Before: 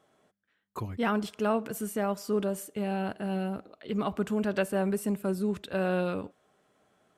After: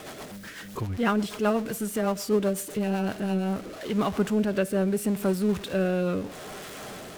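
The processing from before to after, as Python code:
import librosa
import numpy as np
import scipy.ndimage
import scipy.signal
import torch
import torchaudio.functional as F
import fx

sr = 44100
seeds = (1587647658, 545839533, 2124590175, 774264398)

y = x + 0.5 * 10.0 ** (-37.0 / 20.0) * np.sign(x)
y = fx.rotary_switch(y, sr, hz=8.0, then_hz=0.75, switch_at_s=2.91)
y = y * 10.0 ** (4.5 / 20.0)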